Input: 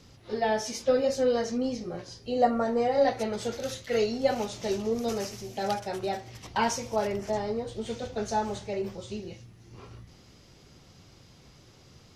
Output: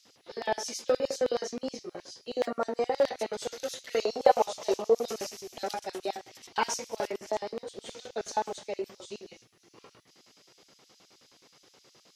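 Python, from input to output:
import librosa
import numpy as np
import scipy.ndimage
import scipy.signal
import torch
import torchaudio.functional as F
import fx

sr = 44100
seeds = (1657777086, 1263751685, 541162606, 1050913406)

y = fx.clip_asym(x, sr, top_db=-17.5, bottom_db=-17.0)
y = fx.filter_lfo_highpass(y, sr, shape='square', hz=9.5, low_hz=350.0, high_hz=4000.0, q=0.77)
y = fx.band_shelf(y, sr, hz=740.0, db=10.0, octaves=1.7, at=(4.01, 5.03))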